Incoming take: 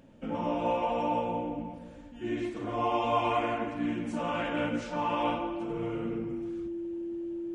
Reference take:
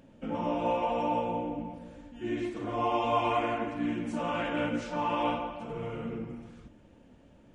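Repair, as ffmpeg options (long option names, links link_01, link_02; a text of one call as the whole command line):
ffmpeg -i in.wav -af "bandreject=frequency=340:width=30" out.wav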